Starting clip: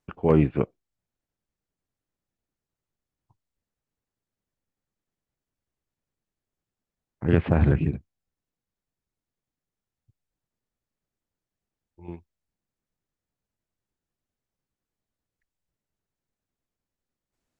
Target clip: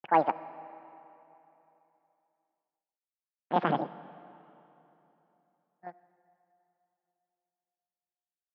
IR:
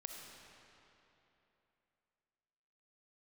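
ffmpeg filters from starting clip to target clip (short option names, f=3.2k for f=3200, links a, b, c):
-filter_complex "[0:a]asetrate=90846,aresample=44100,agate=range=-23dB:threshold=-50dB:ratio=16:detection=peak,highpass=240,equalizer=f=280:t=q:w=4:g=-7,equalizer=f=400:t=q:w=4:g=-8,equalizer=f=780:t=q:w=4:g=6,equalizer=f=1.5k:t=q:w=4:g=3,lowpass=f=2.8k:w=0.5412,lowpass=f=2.8k:w=1.3066,asplit=2[a][b];[1:a]atrim=start_sample=2205[c];[b][c]afir=irnorm=-1:irlink=0,volume=-7.5dB[d];[a][d]amix=inputs=2:normalize=0,volume=-6dB"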